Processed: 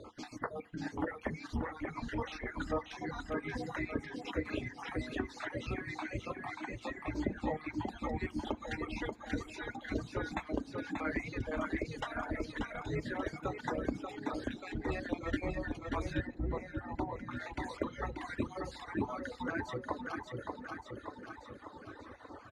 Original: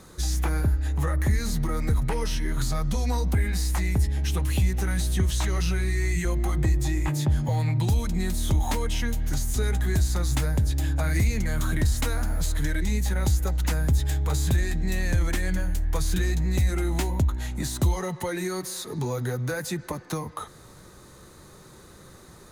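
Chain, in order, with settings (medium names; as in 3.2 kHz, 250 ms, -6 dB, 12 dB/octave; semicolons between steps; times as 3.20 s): random holes in the spectrogram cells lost 42%; high-pass 110 Hz 12 dB/octave; feedback delay 585 ms, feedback 53%, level -5 dB; compression 1.5:1, threshold -40 dBFS, peak gain reduction 7 dB; peaking EQ 170 Hz +10.5 dB 0.53 oct; spectral gate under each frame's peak -10 dB weak; low-pass 2.1 kHz 12 dB/octave, from 16.27 s 1.1 kHz, from 17.31 s 2.1 kHz; reverberation RT60 0.40 s, pre-delay 3 ms, DRR 9.5 dB; reverb removal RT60 1.5 s; trim +4.5 dB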